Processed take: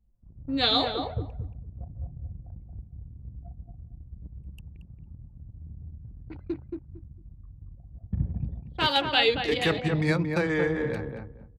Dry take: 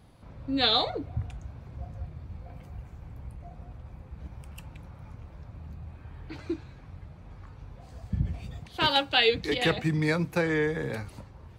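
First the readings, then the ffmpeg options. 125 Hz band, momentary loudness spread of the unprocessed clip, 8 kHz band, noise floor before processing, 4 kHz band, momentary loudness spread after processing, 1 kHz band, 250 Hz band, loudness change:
+1.0 dB, 23 LU, -1.5 dB, -49 dBFS, 0.0 dB, 23 LU, +1.0 dB, +1.5 dB, +0.5 dB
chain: -filter_complex "[0:a]anlmdn=1,asplit=2[a][b];[b]adelay=227,lowpass=f=1.3k:p=1,volume=-4dB,asplit=2[c][d];[d]adelay=227,lowpass=f=1.3k:p=1,volume=0.19,asplit=2[e][f];[f]adelay=227,lowpass=f=1.3k:p=1,volume=0.19[g];[a][c][e][g]amix=inputs=4:normalize=0"

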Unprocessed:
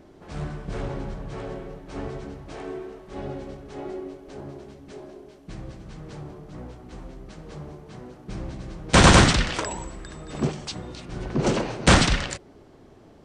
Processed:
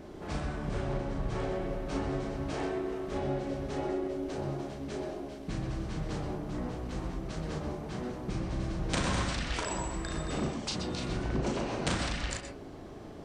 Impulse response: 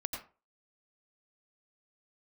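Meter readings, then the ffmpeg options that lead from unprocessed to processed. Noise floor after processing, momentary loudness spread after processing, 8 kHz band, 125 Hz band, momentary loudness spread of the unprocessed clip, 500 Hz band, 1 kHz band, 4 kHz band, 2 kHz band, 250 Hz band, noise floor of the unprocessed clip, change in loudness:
-45 dBFS, 6 LU, -12.0 dB, -8.5 dB, 24 LU, -5.5 dB, -10.5 dB, -12.0 dB, -12.5 dB, -6.5 dB, -51 dBFS, -11.5 dB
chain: -filter_complex "[0:a]acompressor=threshold=-34dB:ratio=12,asplit=2[a][b];[1:a]atrim=start_sample=2205,adelay=37[c];[b][c]afir=irnorm=-1:irlink=0,volume=-3dB[d];[a][d]amix=inputs=2:normalize=0,volume=3dB"

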